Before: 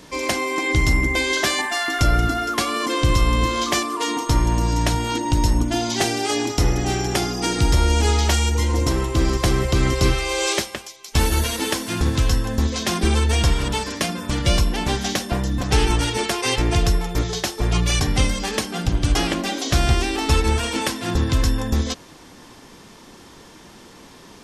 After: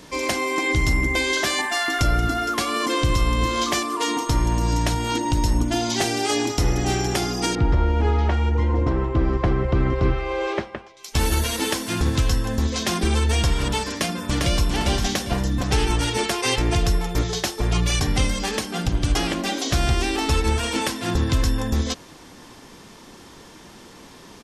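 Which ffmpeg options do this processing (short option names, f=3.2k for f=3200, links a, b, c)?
-filter_complex "[0:a]asettb=1/sr,asplit=3[a][b][c];[a]atrim=end=7.554[d];[b]atrim=start=7.55:end=10.97,asetpts=PTS-STARTPTS,afade=t=in:d=0.004:c=qsin,afade=t=out:st=3.416:d=0.004:c=qsin,lowpass=1.6k[e];[c]atrim=start=10.966[f];[d][e]acrossfade=d=0.004:c1=hsin:c2=qsin[g];[g][f]acrossfade=d=0.004:c1=qsin:c2=hsin,asplit=2[h][i];[i]afade=t=in:st=13.91:d=0.01,afade=t=out:st=14.67:d=0.01,aecho=0:1:400|800|1200|1600:0.595662|0.178699|0.0536096|0.0160829[j];[h][j]amix=inputs=2:normalize=0,alimiter=limit=-10.5dB:level=0:latency=1:release=168"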